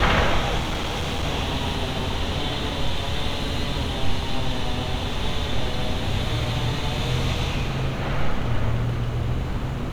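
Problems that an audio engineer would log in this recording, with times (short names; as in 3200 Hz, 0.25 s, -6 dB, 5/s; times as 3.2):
0.58–1.24 clipped -22 dBFS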